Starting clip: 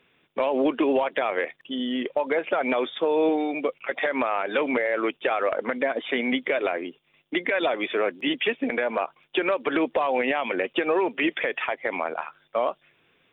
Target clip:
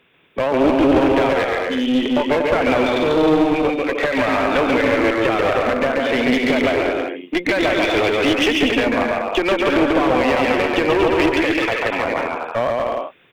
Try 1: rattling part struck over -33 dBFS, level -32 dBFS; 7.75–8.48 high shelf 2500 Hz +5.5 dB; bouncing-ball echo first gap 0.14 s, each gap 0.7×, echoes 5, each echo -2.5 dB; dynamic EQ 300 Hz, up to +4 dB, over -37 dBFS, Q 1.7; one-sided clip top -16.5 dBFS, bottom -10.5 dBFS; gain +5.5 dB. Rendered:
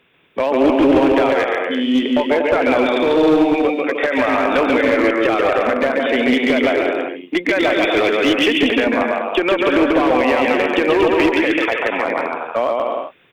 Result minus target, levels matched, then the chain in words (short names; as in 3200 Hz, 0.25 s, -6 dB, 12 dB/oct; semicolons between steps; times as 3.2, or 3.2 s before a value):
one-sided clip: distortion -6 dB
rattling part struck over -33 dBFS, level -32 dBFS; 7.75–8.48 high shelf 2500 Hz +5.5 dB; bouncing-ball echo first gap 0.14 s, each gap 0.7×, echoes 5, each echo -2.5 dB; dynamic EQ 300 Hz, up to +4 dB, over -37 dBFS, Q 1.7; one-sided clip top -23.5 dBFS, bottom -10.5 dBFS; gain +5.5 dB